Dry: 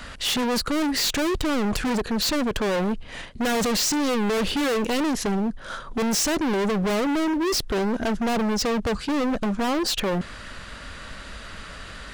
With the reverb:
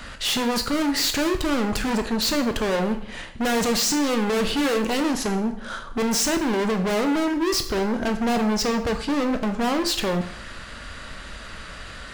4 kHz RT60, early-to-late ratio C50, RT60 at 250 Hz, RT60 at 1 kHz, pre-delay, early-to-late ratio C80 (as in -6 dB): 0.55 s, 10.5 dB, 0.60 s, 0.60 s, 6 ms, 13.5 dB